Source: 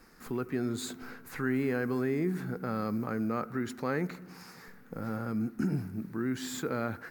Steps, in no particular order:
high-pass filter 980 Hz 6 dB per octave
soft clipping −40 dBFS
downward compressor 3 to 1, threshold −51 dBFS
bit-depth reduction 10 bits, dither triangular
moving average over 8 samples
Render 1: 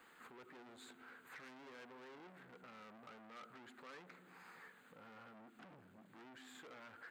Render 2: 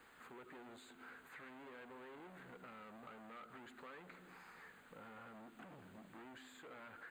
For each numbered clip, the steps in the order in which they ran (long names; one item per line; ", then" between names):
bit-depth reduction, then moving average, then soft clipping, then downward compressor, then high-pass filter
soft clipping, then high-pass filter, then bit-depth reduction, then downward compressor, then moving average